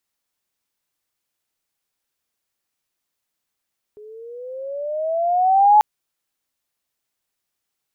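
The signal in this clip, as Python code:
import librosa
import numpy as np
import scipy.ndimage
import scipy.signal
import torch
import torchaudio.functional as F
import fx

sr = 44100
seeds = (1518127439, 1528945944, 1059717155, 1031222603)

y = fx.riser_tone(sr, length_s=1.84, level_db=-7.5, wave='sine', hz=416.0, rise_st=12.5, swell_db=30.5)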